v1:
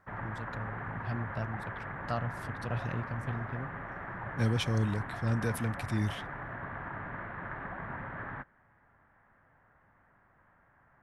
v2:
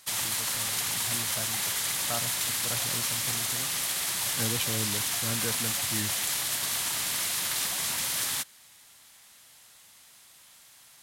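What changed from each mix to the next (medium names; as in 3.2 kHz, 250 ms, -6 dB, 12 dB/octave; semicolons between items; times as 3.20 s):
background: remove elliptic low-pass 1.7 kHz, stop band 70 dB; master: add bass shelf 140 Hz -11 dB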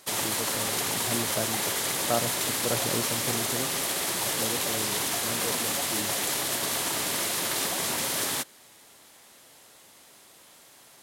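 second voice -12.0 dB; master: add peaking EQ 400 Hz +14.5 dB 2.1 oct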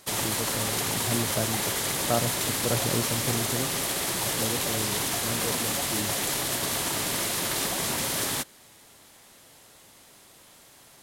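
master: add bass shelf 140 Hz +11 dB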